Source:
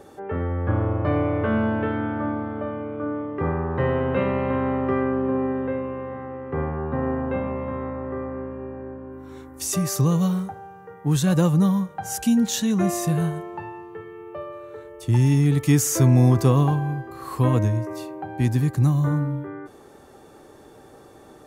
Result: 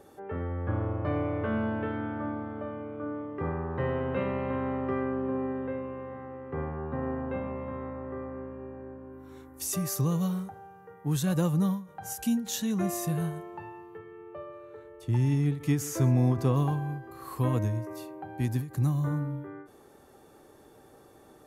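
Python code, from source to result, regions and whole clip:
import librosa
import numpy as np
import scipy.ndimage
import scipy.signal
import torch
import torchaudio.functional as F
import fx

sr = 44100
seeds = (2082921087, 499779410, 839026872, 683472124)

y = fx.chain(x, sr, fx.lowpass(hz=3600.0, slope=6),
    fx.echo_single(ms=132, db=-20.5), at=(13.98, 16.56))
y = fx.peak_eq(y, sr, hz=12000.0, db=8.0, octaves=0.36)
y = fx.end_taper(y, sr, db_per_s=150.0)
y = y * 10.0 ** (-7.5 / 20.0)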